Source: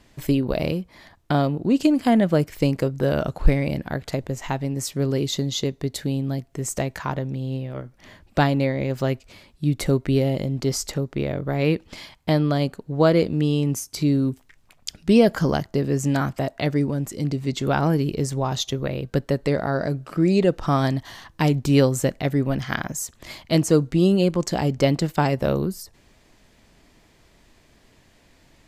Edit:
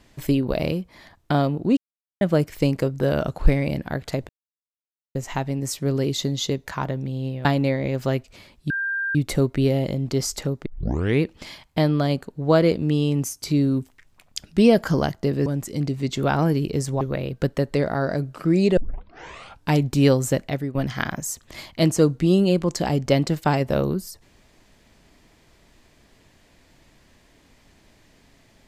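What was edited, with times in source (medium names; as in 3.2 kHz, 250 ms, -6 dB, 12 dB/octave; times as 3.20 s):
1.77–2.21 s: mute
4.29 s: insert silence 0.86 s
5.80–6.94 s: delete
7.73–8.41 s: delete
9.66 s: add tone 1.59 kHz -22.5 dBFS 0.45 s
11.17 s: tape start 0.56 s
15.97–16.90 s: delete
18.45–18.73 s: delete
20.49 s: tape start 0.96 s
22.16–22.47 s: fade out linear, to -13 dB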